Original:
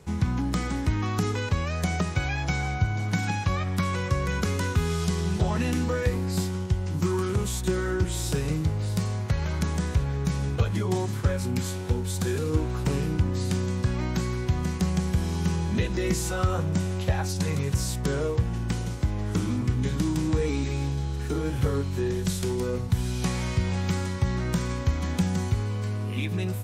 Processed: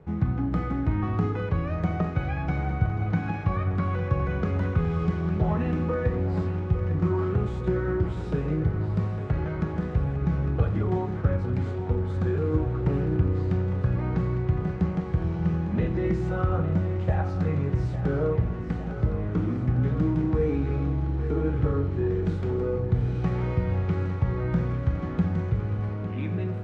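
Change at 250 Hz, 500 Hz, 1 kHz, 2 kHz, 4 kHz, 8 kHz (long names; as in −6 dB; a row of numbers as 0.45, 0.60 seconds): +0.5 dB, +1.5 dB, −1.0 dB, −5.0 dB, below −15 dB, below −25 dB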